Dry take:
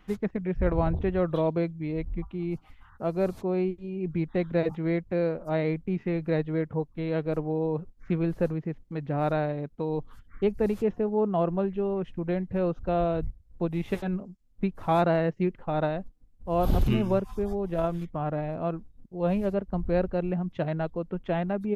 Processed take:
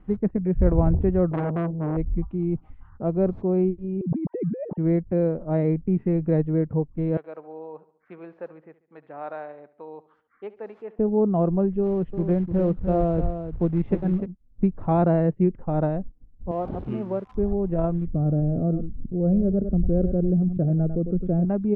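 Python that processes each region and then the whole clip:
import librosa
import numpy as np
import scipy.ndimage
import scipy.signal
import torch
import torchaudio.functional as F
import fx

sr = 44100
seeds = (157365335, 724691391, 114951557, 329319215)

y = fx.chain(x, sr, fx.peak_eq(hz=200.0, db=6.5, octaves=2.9),
    fx.transformer_sat(knee_hz=1700.0), at=(1.31, 1.97))
y = fx.chain(y, sr, fx.sine_speech(),
    fx.lowpass(hz=1100.0, slope=6),
    fx.over_compress(threshold_db=-33.0, ratio=-1.0), at=(4.01, 4.78))
y = fx.chain(y, sr, fx.highpass(hz=960.0, slope=12),
    fx.echo_feedback(ms=70, feedback_pct=49, wet_db=-17.5), at=(7.17, 10.99))
y = fx.chain(y, sr, fx.quant_float(bits=2),
    fx.echo_single(ms=300, db=-9.0), at=(11.83, 14.26))
y = fx.chain(y, sr, fx.crossing_spikes(level_db=-22.0),
    fx.highpass(hz=690.0, slope=6),
    fx.high_shelf(hz=2500.0, db=-9.5), at=(16.51, 17.35))
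y = fx.chain(y, sr, fx.moving_average(points=45),
    fx.echo_single(ms=100, db=-14.5),
    fx.env_flatten(amount_pct=50), at=(18.07, 21.45))
y = scipy.signal.sosfilt(scipy.signal.butter(2, 2100.0, 'lowpass', fs=sr, output='sos'), y)
y = fx.tilt_shelf(y, sr, db=8.0, hz=760.0)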